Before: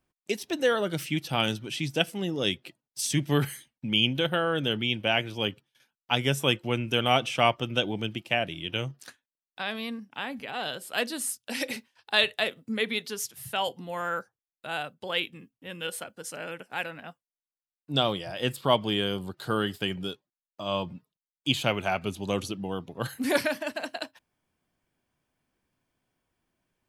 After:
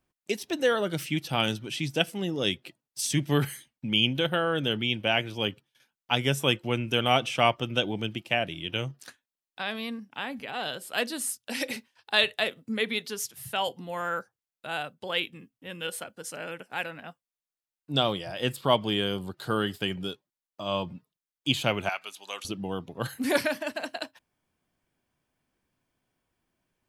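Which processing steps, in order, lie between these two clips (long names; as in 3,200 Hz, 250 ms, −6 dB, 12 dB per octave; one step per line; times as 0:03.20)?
0:21.89–0:22.45: high-pass filter 1,100 Hz 12 dB per octave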